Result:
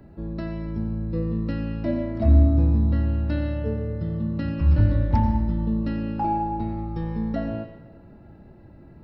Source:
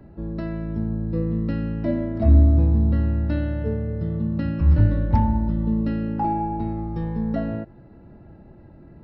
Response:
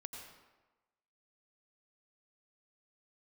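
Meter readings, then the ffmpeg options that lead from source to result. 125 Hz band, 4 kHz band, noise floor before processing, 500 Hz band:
−1.5 dB, can't be measured, −47 dBFS, −1.0 dB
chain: -filter_complex "[0:a]asplit=2[link_01][link_02];[1:a]atrim=start_sample=2205,highshelf=frequency=2200:gain=11[link_03];[link_02][link_03]afir=irnorm=-1:irlink=0,volume=1.5dB[link_04];[link_01][link_04]amix=inputs=2:normalize=0,volume=-6dB"

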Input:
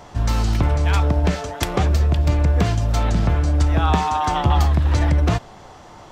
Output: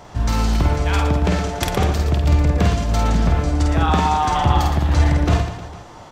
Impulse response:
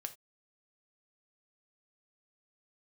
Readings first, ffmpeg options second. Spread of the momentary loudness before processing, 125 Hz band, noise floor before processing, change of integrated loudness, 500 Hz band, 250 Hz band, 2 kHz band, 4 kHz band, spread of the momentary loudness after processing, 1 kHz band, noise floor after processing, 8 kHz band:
4 LU, 0.0 dB, −42 dBFS, +1.0 dB, +2.0 dB, +2.5 dB, +2.0 dB, +2.0 dB, 5 LU, +2.5 dB, −40 dBFS, +2.0 dB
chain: -af "aecho=1:1:50|115|199.5|309.4|452.2:0.631|0.398|0.251|0.158|0.1"

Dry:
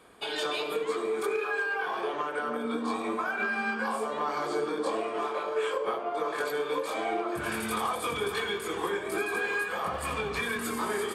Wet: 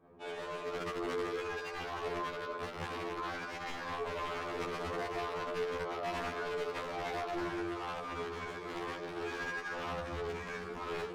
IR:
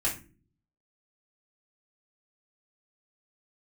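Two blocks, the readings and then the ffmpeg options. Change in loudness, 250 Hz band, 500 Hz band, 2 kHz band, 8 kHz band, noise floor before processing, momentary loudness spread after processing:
−8.0 dB, −7.5 dB, −7.5 dB, −9.5 dB, −13.0 dB, −36 dBFS, 4 LU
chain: -filter_complex "[0:a]alimiter=level_in=4.5dB:limit=-24dB:level=0:latency=1:release=94,volume=-4.5dB,asplit=2[link_01][link_02];[1:a]atrim=start_sample=2205,adelay=33[link_03];[link_02][link_03]afir=irnorm=-1:irlink=0,volume=-8.5dB[link_04];[link_01][link_04]amix=inputs=2:normalize=0,aeval=exprs='(mod(23.7*val(0)+1,2)-1)/23.7':channel_layout=same,adynamicsmooth=sensitivity=4.5:basefreq=610,afftfilt=real='re*2*eq(mod(b,4),0)':imag='im*2*eq(mod(b,4),0)':win_size=2048:overlap=0.75"

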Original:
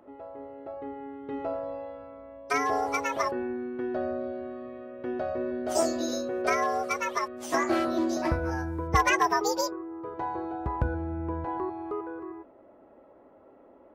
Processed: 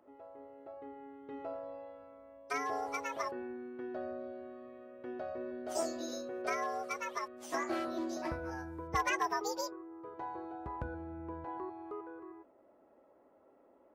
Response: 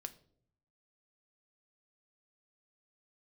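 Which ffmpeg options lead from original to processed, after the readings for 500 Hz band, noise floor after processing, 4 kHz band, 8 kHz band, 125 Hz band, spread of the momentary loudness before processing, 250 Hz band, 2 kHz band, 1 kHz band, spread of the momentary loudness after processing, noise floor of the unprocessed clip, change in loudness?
−10.0 dB, −65 dBFS, −9.0 dB, −9.0 dB, −14.5 dB, 15 LU, −10.5 dB, −9.0 dB, −9.0 dB, 15 LU, −55 dBFS, −9.5 dB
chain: -af "lowshelf=frequency=170:gain=-7,volume=-9dB"

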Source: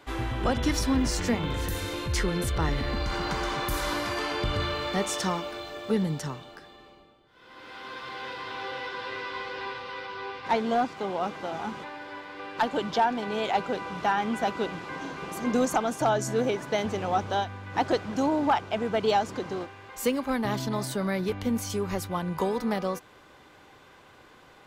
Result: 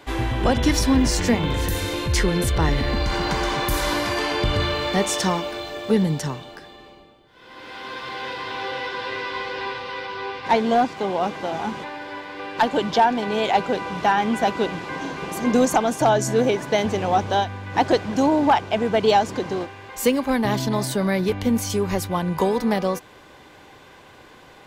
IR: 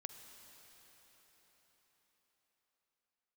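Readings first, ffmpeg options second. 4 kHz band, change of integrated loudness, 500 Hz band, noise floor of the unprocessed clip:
+7.0 dB, +7.0 dB, +7.0 dB, −54 dBFS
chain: -af "equalizer=frequency=1300:width=6.1:gain=-6.5,volume=7dB"

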